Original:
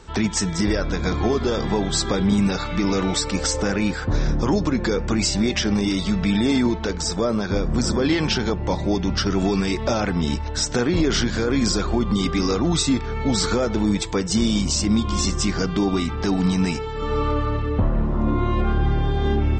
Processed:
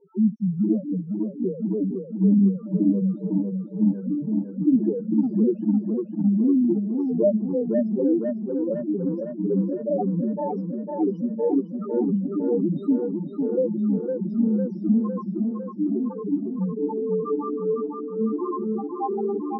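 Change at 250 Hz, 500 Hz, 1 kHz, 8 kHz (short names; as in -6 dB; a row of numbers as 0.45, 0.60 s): 0.0 dB, -1.0 dB, -8.0 dB, under -40 dB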